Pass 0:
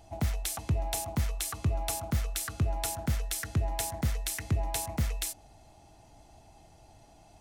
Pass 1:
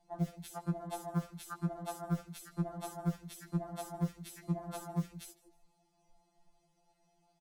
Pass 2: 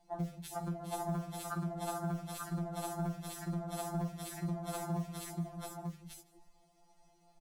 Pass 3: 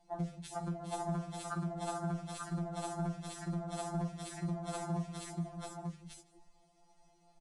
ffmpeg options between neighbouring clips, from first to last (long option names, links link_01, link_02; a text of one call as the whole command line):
ffmpeg -i in.wav -filter_complex "[0:a]afwtdn=0.0141,asplit=4[link_01][link_02][link_03][link_04];[link_02]adelay=155,afreqshift=84,volume=-23.5dB[link_05];[link_03]adelay=310,afreqshift=168,volume=-31.7dB[link_06];[link_04]adelay=465,afreqshift=252,volume=-39.9dB[link_07];[link_01][link_05][link_06][link_07]amix=inputs=4:normalize=0,afftfilt=real='re*2.83*eq(mod(b,8),0)':imag='im*2.83*eq(mod(b,8),0)':win_size=2048:overlap=0.75,volume=2.5dB" out.wav
ffmpeg -i in.wav -filter_complex "[0:a]bandreject=frequency=51.38:width_type=h:width=4,bandreject=frequency=102.76:width_type=h:width=4,bandreject=frequency=154.14:width_type=h:width=4,bandreject=frequency=205.52:width_type=h:width=4,bandreject=frequency=256.9:width_type=h:width=4,bandreject=frequency=308.28:width_type=h:width=4,alimiter=level_in=7.5dB:limit=-24dB:level=0:latency=1:release=314,volume=-7.5dB,asplit=2[link_01][link_02];[link_02]aecho=0:1:47|409|439|861|891:0.266|0.335|0.316|0.106|0.631[link_03];[link_01][link_03]amix=inputs=2:normalize=0,volume=3dB" out.wav
ffmpeg -i in.wav -af "aresample=22050,aresample=44100" out.wav